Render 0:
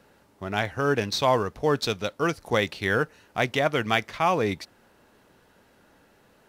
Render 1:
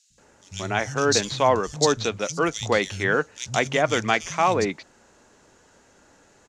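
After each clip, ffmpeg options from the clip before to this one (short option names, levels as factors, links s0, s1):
-filter_complex "[0:a]lowpass=f=6900:t=q:w=5.1,acrossover=split=160|3400[s0][s1][s2];[s0]adelay=100[s3];[s1]adelay=180[s4];[s3][s4][s2]amix=inputs=3:normalize=0,volume=1.33"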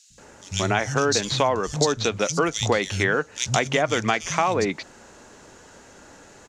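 -af "acompressor=threshold=0.0447:ratio=5,volume=2.66"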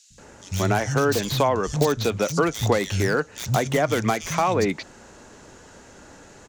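-filter_complex "[0:a]lowshelf=f=260:g=4.5,acrossover=split=490|1300[s0][s1][s2];[s2]aeval=exprs='0.0631*(abs(mod(val(0)/0.0631+3,4)-2)-1)':c=same[s3];[s0][s1][s3]amix=inputs=3:normalize=0"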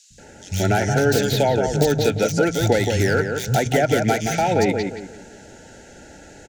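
-filter_complex "[0:a]asuperstop=centerf=1100:order=20:qfactor=2.6,asplit=2[s0][s1];[s1]adelay=174,lowpass=f=1900:p=1,volume=0.562,asplit=2[s2][s3];[s3]adelay=174,lowpass=f=1900:p=1,volume=0.34,asplit=2[s4][s5];[s5]adelay=174,lowpass=f=1900:p=1,volume=0.34,asplit=2[s6][s7];[s7]adelay=174,lowpass=f=1900:p=1,volume=0.34[s8];[s0][s2][s4][s6][s8]amix=inputs=5:normalize=0,volume=1.33"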